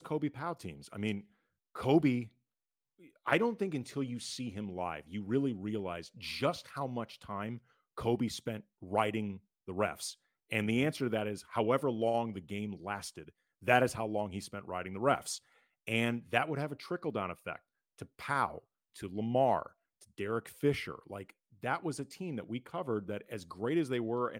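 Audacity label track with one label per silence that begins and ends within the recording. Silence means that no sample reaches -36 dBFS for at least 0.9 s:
2.230000	3.270000	silence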